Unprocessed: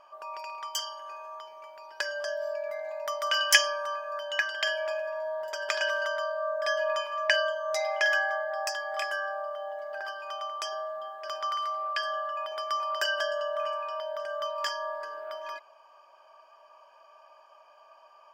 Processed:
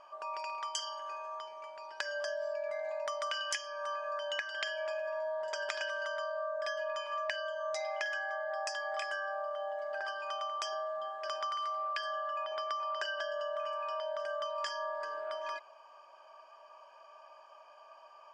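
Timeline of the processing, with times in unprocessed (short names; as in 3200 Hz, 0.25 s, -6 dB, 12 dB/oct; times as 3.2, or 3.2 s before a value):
12.44–13.4 air absorption 81 m
whole clip: steep low-pass 9300 Hz 36 dB/oct; compressor 16:1, threshold -33 dBFS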